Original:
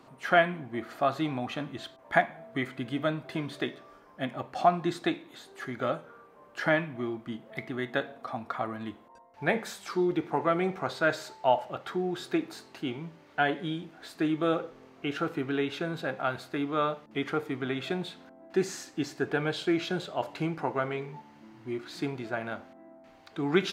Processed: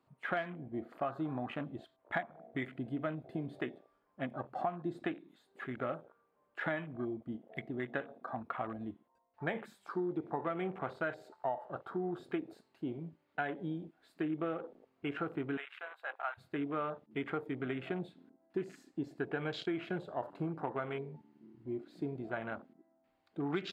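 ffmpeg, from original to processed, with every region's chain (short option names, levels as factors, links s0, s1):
-filter_complex "[0:a]asettb=1/sr,asplit=3[s0][s1][s2];[s0]atrim=end=15.574[s3];[s1]atrim=start=15.57:end=16.38,asetpts=PTS-STARTPTS,afade=t=in:d=0.004:c=qsin,afade=t=out:st=0.806:d=0.004:c=qsin,highpass=f=740:w=0.5412,highpass=f=740:w=1.3066,equalizer=f=5600:w=0.93:g=-6.5[s4];[s2]atrim=start=16.376[s5];[s3][s4]acrossfade=d=0.004:c1=hsin:c2=qsin[s6];[s6][s5]acrossfade=d=0.004:c1=qsin:c2=hsin,afwtdn=0.0112,equalizer=f=6000:t=o:w=0.34:g=-8,acompressor=threshold=0.0398:ratio=6,volume=0.631"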